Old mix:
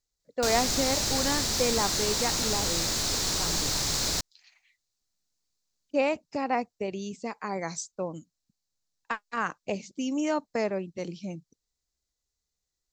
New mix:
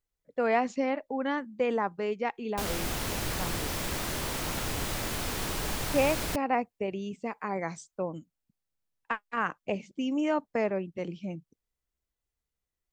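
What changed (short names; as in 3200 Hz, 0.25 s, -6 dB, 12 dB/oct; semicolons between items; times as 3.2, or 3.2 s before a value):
background: entry +2.15 s; master: add band shelf 5400 Hz -12.5 dB 1.2 oct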